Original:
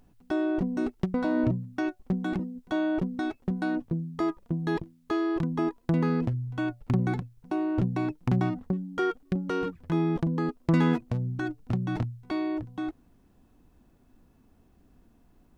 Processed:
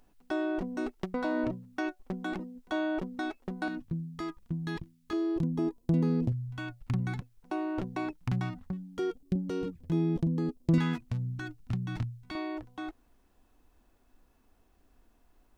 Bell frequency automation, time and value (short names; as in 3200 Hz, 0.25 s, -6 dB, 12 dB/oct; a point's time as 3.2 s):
bell -14.5 dB 2.2 oct
110 Hz
from 3.68 s 550 Hz
from 5.13 s 1500 Hz
from 6.32 s 430 Hz
from 7.2 s 120 Hz
from 8.13 s 400 Hz
from 8.98 s 1300 Hz
from 10.78 s 480 Hz
from 12.35 s 150 Hz